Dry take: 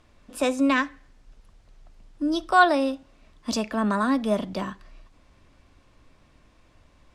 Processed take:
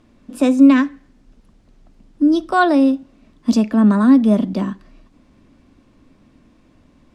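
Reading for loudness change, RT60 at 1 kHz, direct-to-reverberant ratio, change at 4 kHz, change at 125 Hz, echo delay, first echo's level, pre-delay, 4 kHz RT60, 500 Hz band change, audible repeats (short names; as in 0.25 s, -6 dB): +9.0 dB, none, none, 0.0 dB, n/a, none, none, none, none, +4.5 dB, none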